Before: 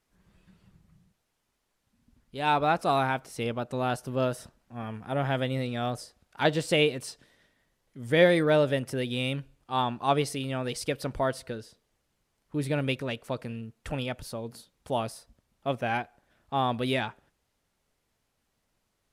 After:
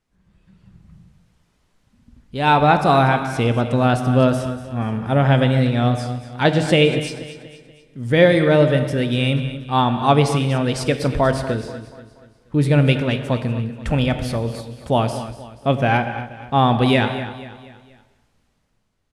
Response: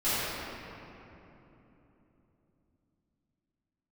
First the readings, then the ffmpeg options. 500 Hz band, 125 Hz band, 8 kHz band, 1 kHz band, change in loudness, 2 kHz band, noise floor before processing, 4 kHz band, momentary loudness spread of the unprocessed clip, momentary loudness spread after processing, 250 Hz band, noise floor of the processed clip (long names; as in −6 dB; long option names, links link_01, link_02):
+9.0 dB, +15.0 dB, +6.0 dB, +10.0 dB, +10.5 dB, +9.0 dB, −78 dBFS, +8.0 dB, 15 LU, 14 LU, +12.5 dB, −64 dBFS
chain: -filter_complex "[0:a]lowpass=10000,bass=frequency=250:gain=6,treble=frequency=4000:gain=-2,dynaudnorm=framelen=120:gausssize=13:maxgain=11.5dB,aecho=1:1:240|480|720|960:0.2|0.0898|0.0404|0.0182,asplit=2[link_01][link_02];[1:a]atrim=start_sample=2205,afade=type=out:start_time=0.24:duration=0.01,atrim=end_sample=11025,asetrate=31752,aresample=44100[link_03];[link_02][link_03]afir=irnorm=-1:irlink=0,volume=-21dB[link_04];[link_01][link_04]amix=inputs=2:normalize=0,volume=-1.5dB"